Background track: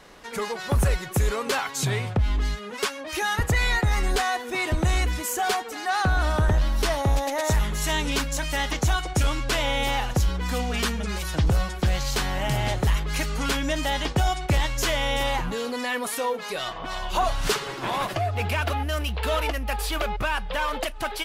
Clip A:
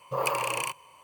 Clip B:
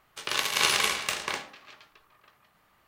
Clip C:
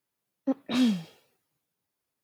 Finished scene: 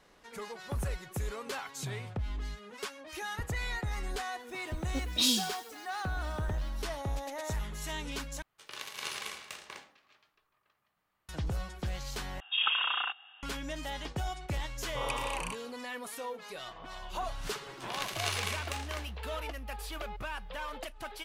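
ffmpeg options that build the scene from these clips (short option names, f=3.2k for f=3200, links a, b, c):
-filter_complex "[2:a]asplit=2[a][b];[1:a]asplit=2[c][d];[0:a]volume=-13dB[e];[3:a]aexciter=amount=7.1:drive=9.3:freq=2.9k[f];[c]lowpass=f=3.2k:t=q:w=0.5098,lowpass=f=3.2k:t=q:w=0.6013,lowpass=f=3.2k:t=q:w=0.9,lowpass=f=3.2k:t=q:w=2.563,afreqshift=-3800[g];[d]lowpass=f=11k:w=0.5412,lowpass=f=11k:w=1.3066[h];[e]asplit=3[i][j][k];[i]atrim=end=8.424[l];[a]atrim=end=2.87,asetpts=PTS-STARTPTS,volume=-15dB[m];[j]atrim=start=11.286:end=12.404[n];[g]atrim=end=1.03,asetpts=PTS-STARTPTS,volume=-1dB[o];[k]atrim=start=13.426[p];[f]atrim=end=2.23,asetpts=PTS-STARTPTS,volume=-10.5dB,afade=t=in:d=0.004:c=hsin,afade=t=out:st=2.226:d=0.004:c=hsin,adelay=4470[q];[h]atrim=end=1.03,asetpts=PTS-STARTPTS,volume=-8dB,afade=t=in:d=0.004:c=hsin,afade=t=out:st=1.026:d=0.004:c=hsin,adelay=14830[r];[b]atrim=end=2.87,asetpts=PTS-STARTPTS,volume=-10.5dB,afade=t=in:d=0.004:c=hsin,afade=t=out:st=2.866:d=0.004:c=hsin,adelay=17630[s];[l][m]acrossfade=d=0.004:c1=hsin:c2=hsin[t];[t][n]acrossfade=d=0.004:c1=hsin:c2=hsin[u];[u][o]acrossfade=d=0.004:c1=hsin:c2=hsin[v];[v][p]acrossfade=d=0.004:c1=hsin:c2=hsin[w];[w][q][r][s]amix=inputs=4:normalize=0"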